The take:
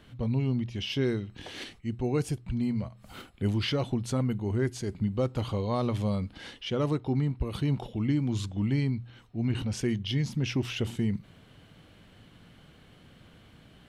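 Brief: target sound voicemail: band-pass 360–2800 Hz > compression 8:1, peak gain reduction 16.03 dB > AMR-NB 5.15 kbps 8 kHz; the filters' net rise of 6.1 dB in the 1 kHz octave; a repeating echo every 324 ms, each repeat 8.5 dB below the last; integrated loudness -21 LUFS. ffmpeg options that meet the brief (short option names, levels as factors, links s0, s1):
-af "highpass=360,lowpass=2800,equalizer=f=1000:t=o:g=8,aecho=1:1:324|648|972|1296:0.376|0.143|0.0543|0.0206,acompressor=threshold=0.0126:ratio=8,volume=15" -ar 8000 -c:a libopencore_amrnb -b:a 5150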